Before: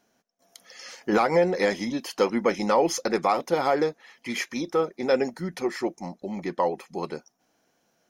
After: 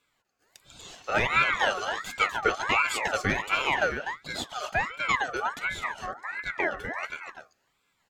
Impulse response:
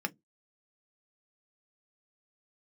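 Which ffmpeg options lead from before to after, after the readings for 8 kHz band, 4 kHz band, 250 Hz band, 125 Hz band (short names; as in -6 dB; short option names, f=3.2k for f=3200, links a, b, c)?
-2.5 dB, +3.5 dB, -12.0 dB, -3.0 dB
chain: -filter_complex "[0:a]aecho=1:1:145|248:0.141|0.422,asplit=2[a][b];[1:a]atrim=start_sample=2205[c];[b][c]afir=irnorm=-1:irlink=0,volume=-3.5dB[d];[a][d]amix=inputs=2:normalize=0,aeval=exprs='val(0)*sin(2*PI*1400*n/s+1400*0.35/1.4*sin(2*PI*1.4*n/s))':c=same,volume=-5.5dB"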